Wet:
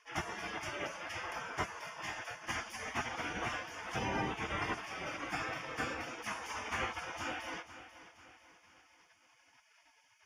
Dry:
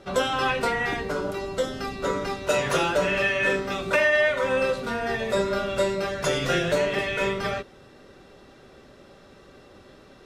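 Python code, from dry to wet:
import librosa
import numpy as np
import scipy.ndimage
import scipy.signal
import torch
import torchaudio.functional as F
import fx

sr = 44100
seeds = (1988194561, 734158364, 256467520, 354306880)

p1 = fx.spec_gate(x, sr, threshold_db=-25, keep='weak')
p2 = scipy.signal.sosfilt(scipy.signal.butter(2, 66.0, 'highpass', fs=sr, output='sos'), p1)
p3 = fx.rider(p2, sr, range_db=10, speed_s=0.5)
p4 = p2 + F.gain(torch.from_numpy(p3), 2.0).numpy()
p5 = 10.0 ** (-25.5 / 20.0) * np.tanh(p4 / 10.0 ** (-25.5 / 20.0))
p6 = scipy.signal.lfilter(np.full(11, 1.0 / 11), 1.0, p5)
p7 = p6 + fx.echo_feedback(p6, sr, ms=488, feedback_pct=46, wet_db=-14, dry=0)
y = F.gain(torch.from_numpy(p7), 2.5).numpy()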